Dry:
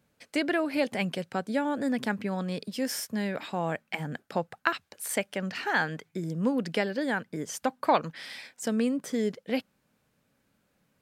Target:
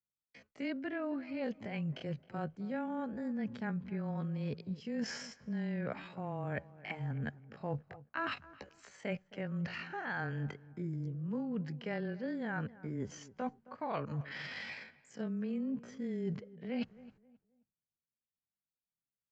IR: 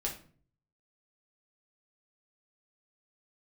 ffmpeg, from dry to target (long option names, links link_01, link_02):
-filter_complex "[0:a]bandreject=frequency=3600:width=9.1,agate=range=-40dB:threshold=-54dB:ratio=16:detection=peak,bass=frequency=250:gain=7,treble=frequency=4000:gain=-11,areverse,acompressor=threshold=-36dB:ratio=10,areverse,afreqshift=-17,atempo=0.57,asplit=2[link_01][link_02];[link_02]adelay=266,lowpass=frequency=1500:poles=1,volume=-18dB,asplit=2[link_03][link_04];[link_04]adelay=266,lowpass=frequency=1500:poles=1,volume=0.31,asplit=2[link_05][link_06];[link_06]adelay=266,lowpass=frequency=1500:poles=1,volume=0.31[link_07];[link_03][link_05][link_07]amix=inputs=3:normalize=0[link_08];[link_01][link_08]amix=inputs=2:normalize=0,aresample=16000,aresample=44100,volume=1dB"